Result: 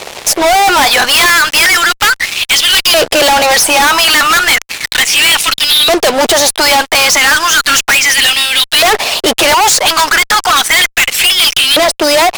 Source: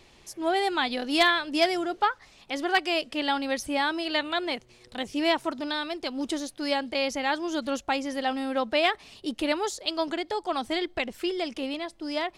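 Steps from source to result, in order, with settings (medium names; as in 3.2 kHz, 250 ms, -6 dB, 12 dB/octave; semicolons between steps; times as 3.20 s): LFO high-pass saw up 0.34 Hz 500–3700 Hz; harmonic-percussive split harmonic -8 dB; fuzz box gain 49 dB, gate -57 dBFS; trim +6.5 dB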